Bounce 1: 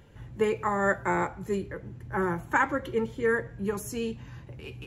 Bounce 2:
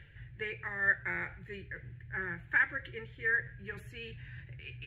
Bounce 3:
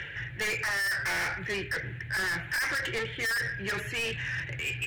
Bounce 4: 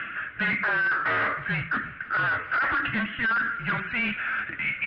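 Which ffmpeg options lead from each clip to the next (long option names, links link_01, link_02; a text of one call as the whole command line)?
ffmpeg -i in.wav -af "firequalizer=gain_entry='entry(140,0);entry(220,-19);entry(320,-10);entry(1100,-16);entry(1700,10);entry(2500,5);entry(3600,-2);entry(5600,-23);entry(13000,-21)':delay=0.05:min_phase=1,areverse,acompressor=mode=upward:threshold=-34dB:ratio=2.5,areverse,volume=-6.5dB" out.wav
ffmpeg -i in.wav -filter_complex "[0:a]asplit=2[link_01][link_02];[link_02]highpass=frequency=720:poles=1,volume=26dB,asoftclip=type=tanh:threshold=-16dB[link_03];[link_01][link_03]amix=inputs=2:normalize=0,lowpass=frequency=3700:poles=1,volume=-6dB,acrossover=split=130[link_04][link_05];[link_05]asoftclip=type=tanh:threshold=-31.5dB[link_06];[link_04][link_06]amix=inputs=2:normalize=0,volume=3.5dB" out.wav
ffmpeg -i in.wav -af "aecho=1:1:316:0.0891,highpass=frequency=320:width_type=q:width=0.5412,highpass=frequency=320:width_type=q:width=1.307,lowpass=frequency=3300:width_type=q:width=0.5176,lowpass=frequency=3300:width_type=q:width=0.7071,lowpass=frequency=3300:width_type=q:width=1.932,afreqshift=-240,volume=5.5dB" out.wav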